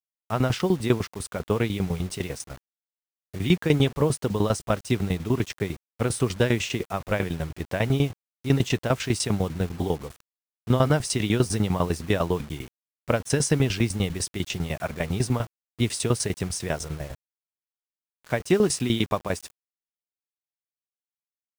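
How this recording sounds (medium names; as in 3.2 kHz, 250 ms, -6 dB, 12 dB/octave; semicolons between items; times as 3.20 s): tremolo saw down 10 Hz, depth 85%; a quantiser's noise floor 8-bit, dither none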